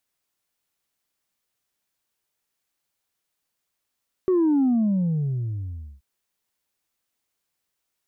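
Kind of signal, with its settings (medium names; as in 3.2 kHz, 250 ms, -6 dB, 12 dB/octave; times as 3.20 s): sub drop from 380 Hz, over 1.73 s, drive 1 dB, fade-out 1.39 s, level -17 dB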